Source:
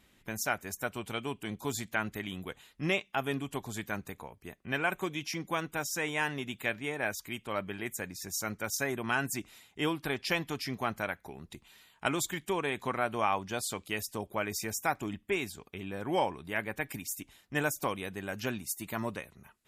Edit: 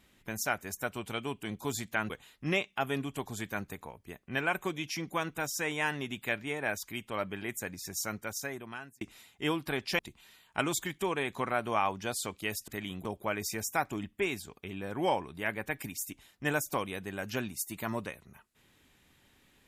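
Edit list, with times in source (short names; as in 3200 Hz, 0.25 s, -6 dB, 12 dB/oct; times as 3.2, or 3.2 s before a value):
2.1–2.47 move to 14.15
8.36–9.38 fade out
10.36–11.46 cut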